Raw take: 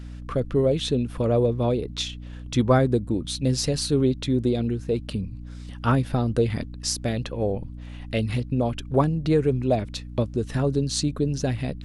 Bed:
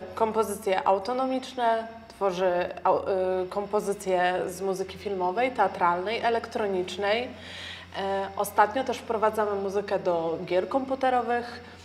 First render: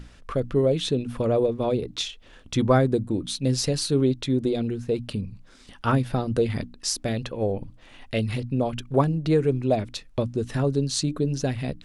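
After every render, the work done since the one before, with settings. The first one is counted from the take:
mains-hum notches 60/120/180/240/300 Hz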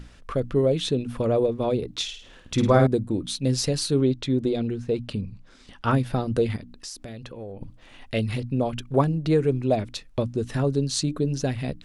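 0:02.03–0:02.87: flutter between parallel walls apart 9 metres, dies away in 0.49 s
0:03.99–0:05.91: Bessel low-pass filter 7,200 Hz
0:06.56–0:07.61: downward compressor 4 to 1, threshold −36 dBFS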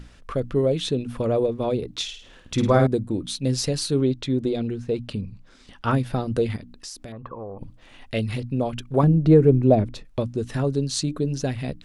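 0:07.12–0:07.59: low-pass with resonance 1,100 Hz, resonance Q 8.5
0:09.03–0:10.05: tilt shelving filter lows +8 dB, about 1,200 Hz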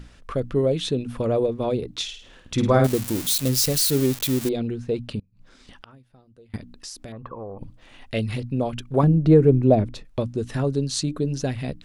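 0:02.84–0:04.49: spike at every zero crossing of −16 dBFS
0:05.19–0:06.54: gate with flip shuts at −29 dBFS, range −29 dB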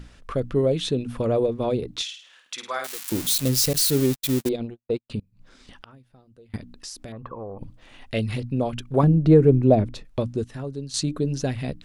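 0:02.02–0:03.12: high-pass filter 1,300 Hz
0:03.73–0:05.10: noise gate −26 dBFS, range −59 dB
0:10.44–0:10.94: clip gain −9 dB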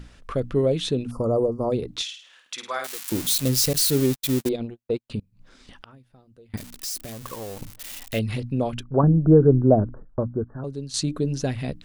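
0:01.11–0:01.72: linear-phase brick-wall band-stop 1,400–4,500 Hz
0:06.57–0:08.19: spike at every zero crossing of −26.5 dBFS
0:08.83–0:10.64: Butterworth low-pass 1,600 Hz 96 dB per octave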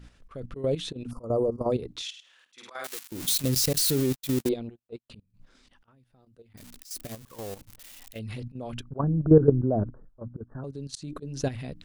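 volume swells 150 ms
output level in coarse steps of 12 dB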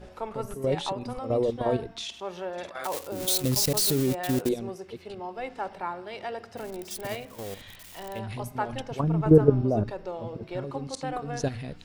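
mix in bed −10 dB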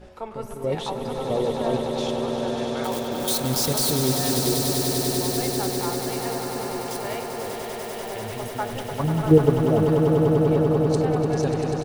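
double-tracking delay 13 ms −13.5 dB
echo that builds up and dies away 98 ms, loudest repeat 8, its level −8.5 dB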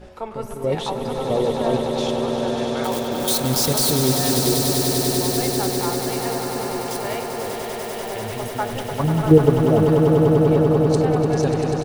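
level +3.5 dB
brickwall limiter −2 dBFS, peak gain reduction 1 dB

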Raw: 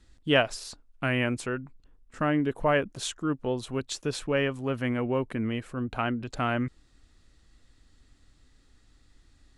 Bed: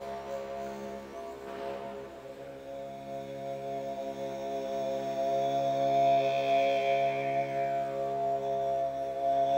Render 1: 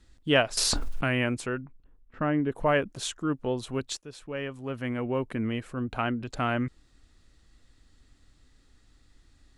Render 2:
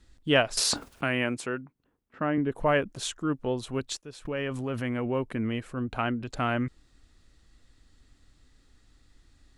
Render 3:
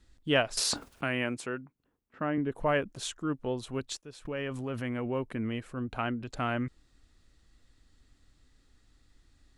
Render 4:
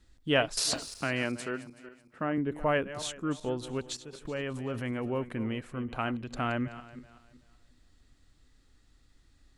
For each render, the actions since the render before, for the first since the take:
0:00.57–0:01.08: envelope flattener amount 100%; 0:01.61–0:02.52: high-frequency loss of the air 360 metres; 0:03.97–0:05.38: fade in, from −17 dB
0:00.60–0:02.38: Bessel high-pass filter 170 Hz; 0:04.25–0:05.11: envelope flattener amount 70%
level −3.5 dB
feedback delay that plays each chunk backwards 189 ms, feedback 48%, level −14 dB

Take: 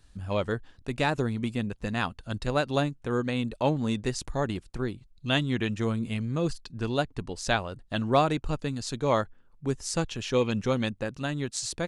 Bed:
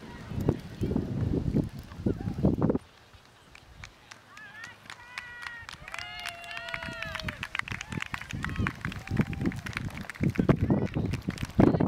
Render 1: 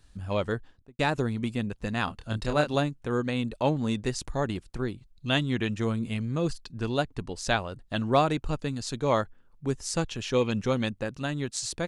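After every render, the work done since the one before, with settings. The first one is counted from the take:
0:00.55–0:00.99: fade out and dull
0:02.05–0:02.74: double-tracking delay 27 ms −5 dB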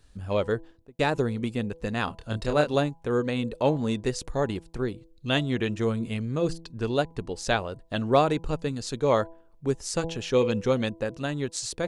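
parametric band 460 Hz +5.5 dB 0.71 octaves
hum removal 165 Hz, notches 6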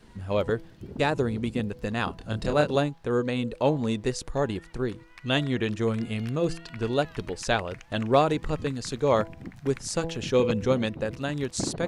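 mix in bed −11 dB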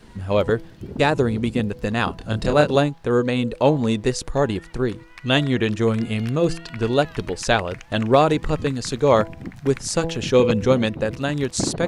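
level +6.5 dB
brickwall limiter −3 dBFS, peak gain reduction 3 dB

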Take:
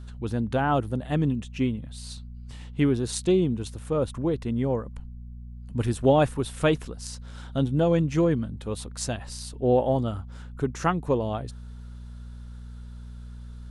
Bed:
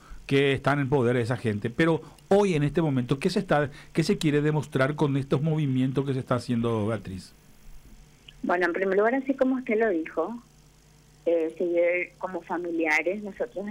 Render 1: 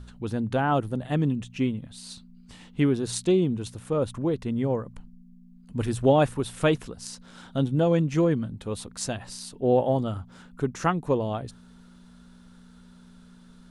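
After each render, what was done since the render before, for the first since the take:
hum removal 60 Hz, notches 2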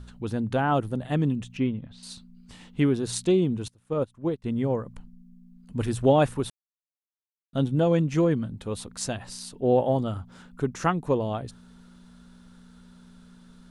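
0:01.57–0:02.03: high-frequency loss of the air 180 metres
0:03.68–0:04.44: expander for the loud parts 2.5 to 1, over −36 dBFS
0:06.50–0:07.53: silence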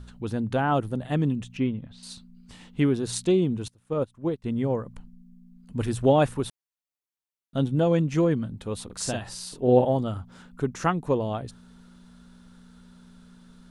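0:08.85–0:09.85: double-tracking delay 48 ms −3 dB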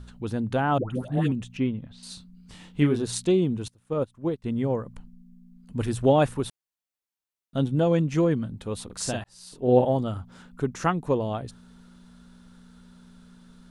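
0:00.78–0:01.32: all-pass dispersion highs, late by 127 ms, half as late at 780 Hz
0:02.09–0:03.05: double-tracking delay 27 ms −6 dB
0:09.24–0:09.76: fade in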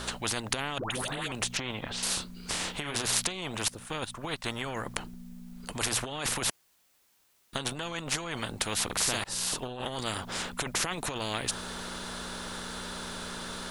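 compressor whose output falls as the input rises −28 dBFS, ratio −1
every bin compressed towards the loudest bin 4 to 1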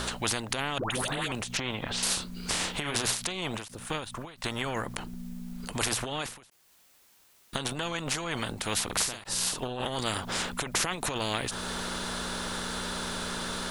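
in parallel at +0.5 dB: downward compressor, threshold −39 dBFS, peak gain reduction 15 dB
on the sum: every ending faded ahead of time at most 110 dB per second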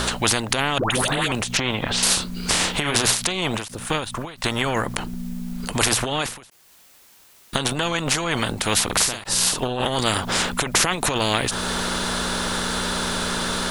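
level +9.5 dB
brickwall limiter −1 dBFS, peak gain reduction 3 dB

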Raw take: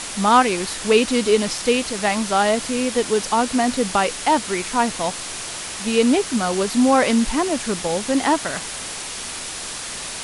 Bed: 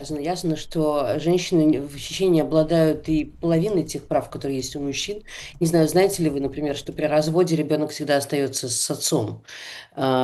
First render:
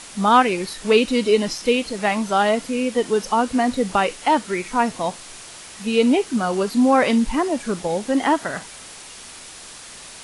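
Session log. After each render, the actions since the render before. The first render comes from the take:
noise reduction from a noise print 9 dB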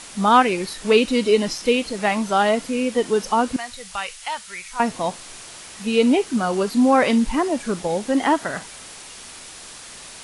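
0:03.56–0:04.80: guitar amp tone stack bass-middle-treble 10-0-10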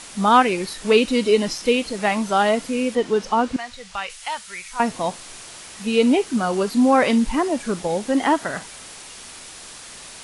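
0:02.95–0:04.10: high-frequency loss of the air 67 metres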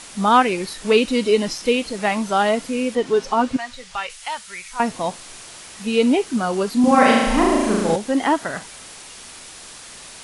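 0:03.06–0:04.07: comb filter 7.4 ms, depth 54%
0:06.80–0:07.96: flutter between parallel walls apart 6.3 metres, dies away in 1.3 s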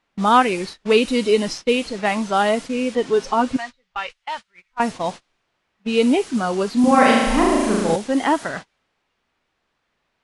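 noise gate −30 dBFS, range −27 dB
low-pass that shuts in the quiet parts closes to 2,400 Hz, open at −14 dBFS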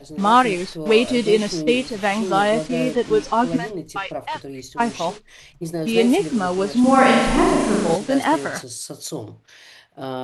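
mix in bed −8.5 dB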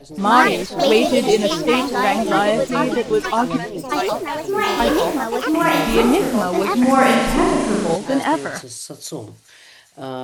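delay with pitch and tempo change per echo 111 ms, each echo +4 semitones, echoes 2
delay with a high-pass on its return 408 ms, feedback 79%, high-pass 4,300 Hz, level −22.5 dB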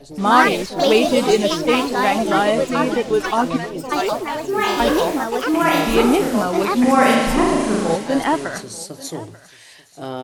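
single-tap delay 888 ms −20 dB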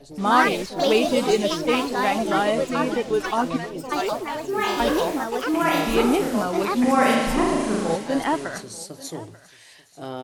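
level −4.5 dB

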